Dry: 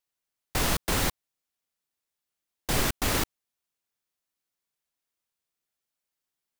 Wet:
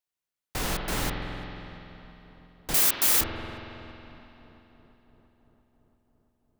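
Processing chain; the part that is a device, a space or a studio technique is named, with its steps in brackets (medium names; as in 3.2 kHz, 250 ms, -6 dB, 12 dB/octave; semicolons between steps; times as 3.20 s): dub delay into a spring reverb (filtered feedback delay 339 ms, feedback 74%, low-pass 2.1 kHz, level -17.5 dB; spring tank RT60 3.1 s, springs 46 ms, chirp 30 ms, DRR 1.5 dB); 2.74–3.21 s: RIAA curve recording; trim -4.5 dB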